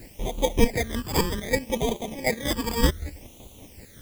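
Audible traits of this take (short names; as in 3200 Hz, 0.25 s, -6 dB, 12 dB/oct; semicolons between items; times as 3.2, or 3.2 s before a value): aliases and images of a low sample rate 1400 Hz, jitter 0%; chopped level 5.3 Hz, depth 60%, duty 40%; a quantiser's noise floor 10-bit, dither triangular; phasing stages 12, 0.65 Hz, lowest notch 650–1700 Hz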